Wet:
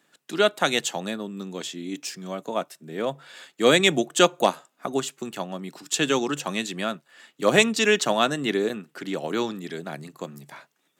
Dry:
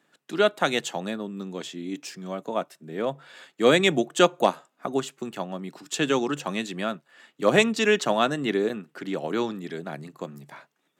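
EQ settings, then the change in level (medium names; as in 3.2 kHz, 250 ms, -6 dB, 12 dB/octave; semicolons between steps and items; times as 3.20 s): treble shelf 3.3 kHz +7.5 dB; 0.0 dB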